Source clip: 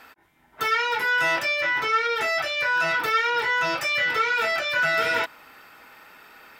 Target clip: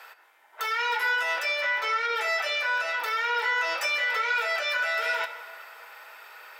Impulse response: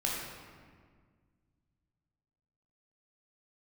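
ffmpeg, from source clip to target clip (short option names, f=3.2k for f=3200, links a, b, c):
-filter_complex "[0:a]highpass=f=510:w=0.5412,highpass=f=510:w=1.3066,alimiter=limit=-21dB:level=0:latency=1:release=191,asplit=2[a][b];[1:a]atrim=start_sample=2205,asetrate=30870,aresample=44100[c];[b][c]afir=irnorm=-1:irlink=0,volume=-14.5dB[d];[a][d]amix=inputs=2:normalize=0"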